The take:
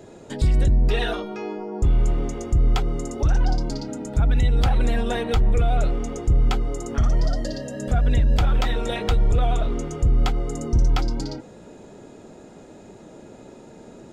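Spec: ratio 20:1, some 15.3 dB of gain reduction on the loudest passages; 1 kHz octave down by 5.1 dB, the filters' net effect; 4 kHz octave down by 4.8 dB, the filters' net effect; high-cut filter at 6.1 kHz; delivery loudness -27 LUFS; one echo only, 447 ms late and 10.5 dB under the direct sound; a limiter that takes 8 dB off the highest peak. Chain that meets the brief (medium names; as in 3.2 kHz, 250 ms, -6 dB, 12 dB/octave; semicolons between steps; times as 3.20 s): low-pass 6.1 kHz; peaking EQ 1 kHz -8 dB; peaking EQ 4 kHz -5 dB; compression 20:1, threshold -30 dBFS; peak limiter -28.5 dBFS; delay 447 ms -10.5 dB; trim +11 dB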